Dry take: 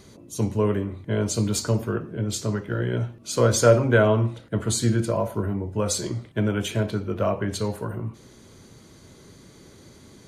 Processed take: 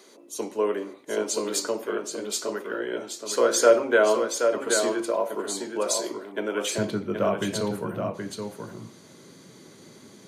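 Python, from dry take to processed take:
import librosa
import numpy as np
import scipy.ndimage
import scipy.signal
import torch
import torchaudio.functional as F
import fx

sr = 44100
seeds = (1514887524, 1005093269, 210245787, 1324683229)

y = fx.highpass(x, sr, hz=fx.steps((0.0, 320.0), (6.78, 140.0)), slope=24)
y = y + 10.0 ** (-6.0 / 20.0) * np.pad(y, (int(775 * sr / 1000.0), 0))[:len(y)]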